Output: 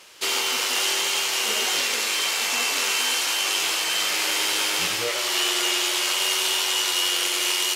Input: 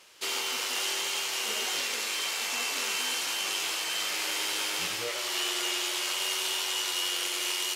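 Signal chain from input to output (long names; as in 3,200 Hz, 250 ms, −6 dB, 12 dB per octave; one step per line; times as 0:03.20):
0:02.76–0:03.55: parametric band 150 Hz −9 dB 1.1 octaves
level +7.5 dB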